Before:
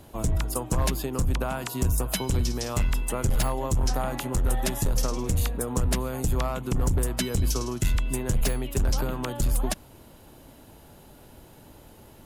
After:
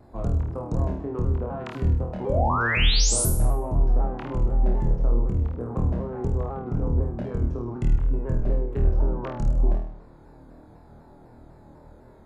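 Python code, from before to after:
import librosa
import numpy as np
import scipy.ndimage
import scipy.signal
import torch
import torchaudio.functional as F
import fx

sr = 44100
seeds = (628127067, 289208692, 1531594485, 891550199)

p1 = fx.wiener(x, sr, points=15)
p2 = fx.env_lowpass_down(p1, sr, base_hz=700.0, full_db=-23.5)
p3 = fx.spec_paint(p2, sr, seeds[0], shape='rise', start_s=2.26, length_s=0.99, low_hz=460.0, high_hz=12000.0, level_db=-26.0)
p4 = p3 + fx.room_flutter(p3, sr, wall_m=4.4, rt60_s=0.64, dry=0)
p5 = fx.vibrato_shape(p4, sr, shape='saw_down', rate_hz=4.0, depth_cents=100.0)
y = F.gain(torch.from_numpy(p5), -2.0).numpy()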